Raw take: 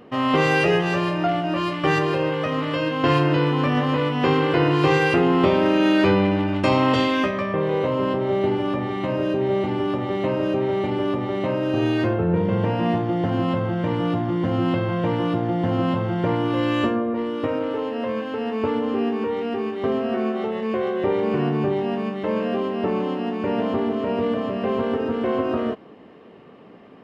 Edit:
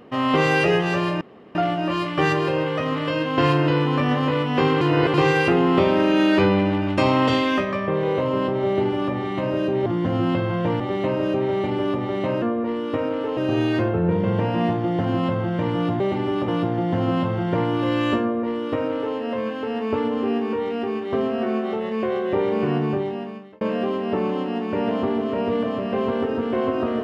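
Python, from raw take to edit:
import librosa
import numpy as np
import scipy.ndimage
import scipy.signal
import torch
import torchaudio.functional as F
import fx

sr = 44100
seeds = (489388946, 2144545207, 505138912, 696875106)

y = fx.edit(x, sr, fx.insert_room_tone(at_s=1.21, length_s=0.34),
    fx.reverse_span(start_s=4.47, length_s=0.33),
    fx.swap(start_s=9.52, length_s=0.48, other_s=14.25, other_length_s=0.94),
    fx.duplicate(start_s=16.92, length_s=0.95, to_s=11.62),
    fx.fade_out_span(start_s=21.54, length_s=0.78), tone=tone)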